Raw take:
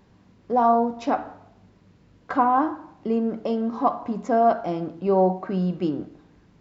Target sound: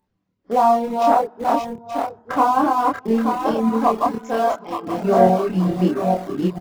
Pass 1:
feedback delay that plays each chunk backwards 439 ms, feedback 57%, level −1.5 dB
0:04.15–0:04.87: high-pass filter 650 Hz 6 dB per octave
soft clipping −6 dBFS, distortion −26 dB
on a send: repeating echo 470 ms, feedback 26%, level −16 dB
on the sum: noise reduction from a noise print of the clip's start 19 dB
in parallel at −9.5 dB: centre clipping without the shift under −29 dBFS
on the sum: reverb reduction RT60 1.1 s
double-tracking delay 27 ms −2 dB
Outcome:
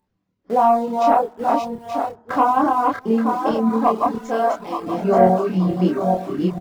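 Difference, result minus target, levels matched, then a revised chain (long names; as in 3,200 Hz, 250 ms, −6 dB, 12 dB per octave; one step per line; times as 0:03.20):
centre clipping without the shift: distortion −8 dB
feedback delay that plays each chunk backwards 439 ms, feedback 57%, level −1.5 dB
0:04.15–0:04.87: high-pass filter 650 Hz 6 dB per octave
soft clipping −6 dBFS, distortion −26 dB
on a send: repeating echo 470 ms, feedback 26%, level −16 dB
on the sum: noise reduction from a noise print of the clip's start 19 dB
in parallel at −9.5 dB: centre clipping without the shift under −22.5 dBFS
on the sum: reverb reduction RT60 1.1 s
double-tracking delay 27 ms −2 dB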